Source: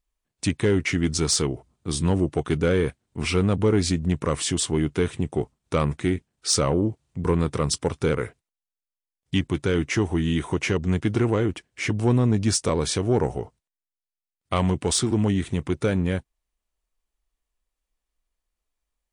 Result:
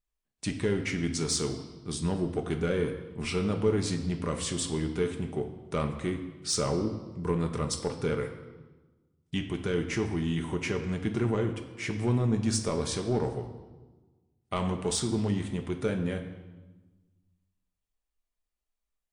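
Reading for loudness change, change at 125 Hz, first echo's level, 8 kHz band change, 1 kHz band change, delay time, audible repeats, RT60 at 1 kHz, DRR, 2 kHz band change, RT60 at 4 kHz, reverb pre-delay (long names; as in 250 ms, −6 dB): −6.5 dB, −7.0 dB, no echo audible, −7.0 dB, −6.5 dB, no echo audible, no echo audible, 1.2 s, 4.5 dB, −7.0 dB, 1.1 s, 5 ms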